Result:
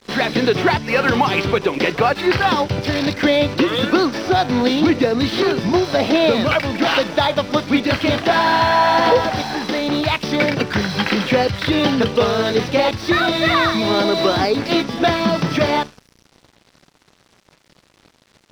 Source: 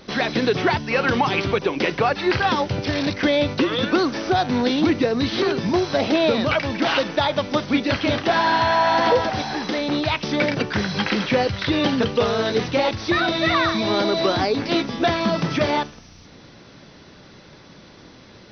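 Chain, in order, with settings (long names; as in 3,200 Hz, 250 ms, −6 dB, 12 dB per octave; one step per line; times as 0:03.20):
echo ahead of the sound 63 ms −18 dB
dead-zone distortion −42 dBFS
level +4 dB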